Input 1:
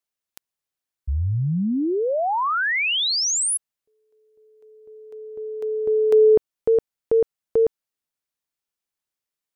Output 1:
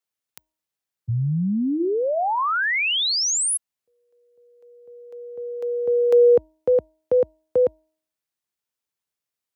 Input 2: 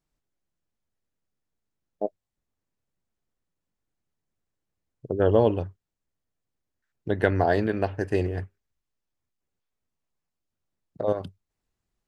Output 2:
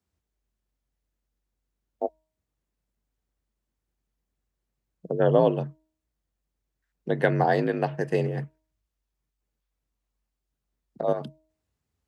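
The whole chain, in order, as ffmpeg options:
-af "afreqshift=48,bandreject=f=314.2:t=h:w=4,bandreject=f=628.4:t=h:w=4,bandreject=f=942.6:t=h:w=4"

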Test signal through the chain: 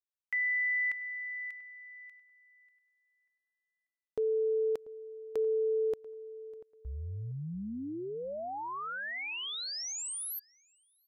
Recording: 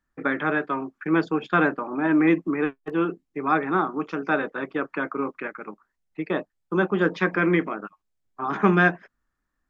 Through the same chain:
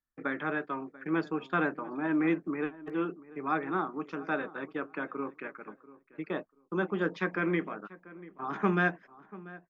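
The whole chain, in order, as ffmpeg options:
-filter_complex "[0:a]agate=range=-7dB:threshold=-52dB:ratio=16:detection=peak,asplit=2[a][b];[b]adelay=689,lowpass=f=1.7k:p=1,volume=-18dB,asplit=2[c][d];[d]adelay=689,lowpass=f=1.7k:p=1,volume=0.23[e];[c][e]amix=inputs=2:normalize=0[f];[a][f]amix=inputs=2:normalize=0,volume=-8.5dB"

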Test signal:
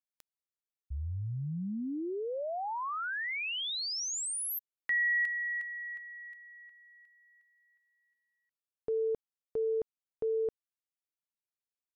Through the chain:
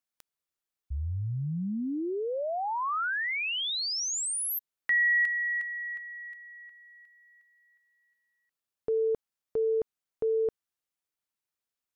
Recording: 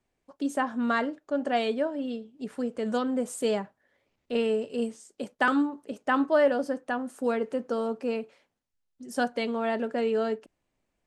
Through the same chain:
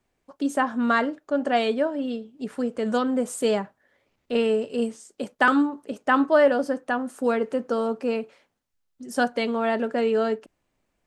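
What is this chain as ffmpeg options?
-af "equalizer=f=1.3k:t=o:w=0.77:g=2,volume=4dB"

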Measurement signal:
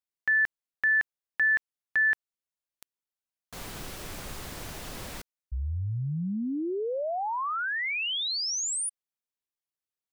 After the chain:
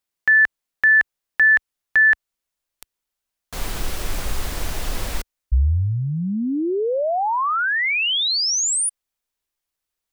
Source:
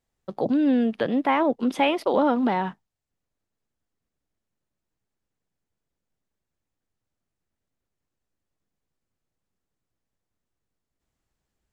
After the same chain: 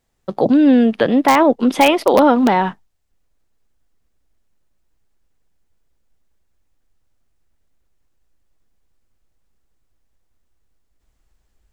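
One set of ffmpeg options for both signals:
-filter_complex "[0:a]asubboost=boost=4.5:cutoff=61,asplit=2[a][b];[b]aeval=exprs='(mod(3.55*val(0)+1,2)-1)/3.55':c=same,volume=-7dB[c];[a][c]amix=inputs=2:normalize=0,volume=6.5dB"

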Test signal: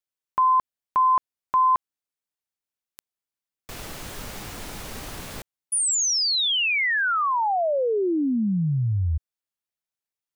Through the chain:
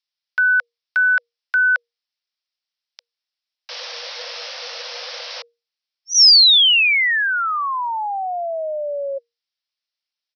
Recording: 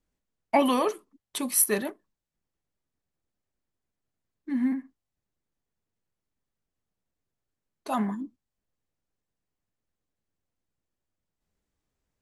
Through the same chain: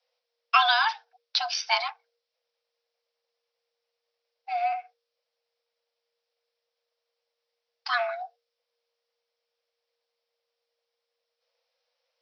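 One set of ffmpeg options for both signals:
-af "aresample=11025,aresample=44100,crystalizer=i=9.5:c=0,afreqshift=470,volume=-2dB"

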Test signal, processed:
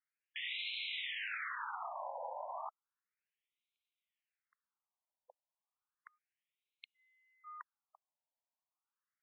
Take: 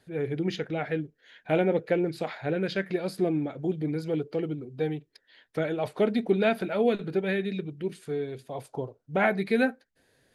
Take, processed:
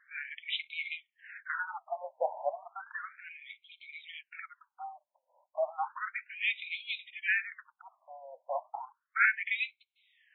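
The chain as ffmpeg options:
-filter_complex "[0:a]asplit=2[a][b];[b]highpass=f=720:p=1,volume=12dB,asoftclip=type=tanh:threshold=-11.5dB[c];[a][c]amix=inputs=2:normalize=0,lowpass=f=7.8k:p=1,volume=-6dB,afftfilt=real='re*between(b*sr/1024,720*pow(3000/720,0.5+0.5*sin(2*PI*0.33*pts/sr))/1.41,720*pow(3000/720,0.5+0.5*sin(2*PI*0.33*pts/sr))*1.41)':imag='im*between(b*sr/1024,720*pow(3000/720,0.5+0.5*sin(2*PI*0.33*pts/sr))/1.41,720*pow(3000/720,0.5+0.5*sin(2*PI*0.33*pts/sr))*1.41)':win_size=1024:overlap=0.75"

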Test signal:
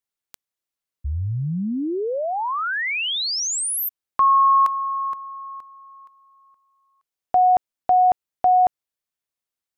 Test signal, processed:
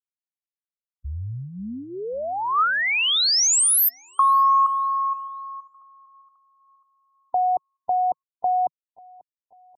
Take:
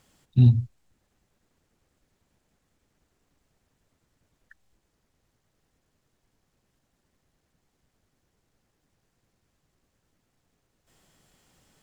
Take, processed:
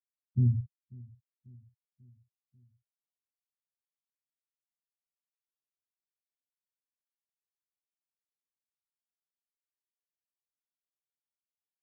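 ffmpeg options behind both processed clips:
-filter_complex "[0:a]afftfilt=real='re*gte(hypot(re,im),0.0708)':imag='im*gte(hypot(re,im),0.0708)':win_size=1024:overlap=0.75,crystalizer=i=7:c=0,acompressor=threshold=-14dB:ratio=6:attack=40:release=73:knee=6:detection=rms,equalizer=f=160:t=o:w=0.33:g=-9,equalizer=f=315:t=o:w=0.33:g=-10,equalizer=f=1.25k:t=o:w=0.33:g=8,asplit=2[a][b];[b]adelay=541,lowpass=f=2.3k:p=1,volume=-23dB,asplit=2[c][d];[d]adelay=541,lowpass=f=2.3k:p=1,volume=0.53,asplit=2[e][f];[f]adelay=541,lowpass=f=2.3k:p=1,volume=0.53,asplit=2[g][h];[h]adelay=541,lowpass=f=2.3k:p=1,volume=0.53[i];[c][e][g][i]amix=inputs=4:normalize=0[j];[a][j]amix=inputs=2:normalize=0,volume=-5dB"

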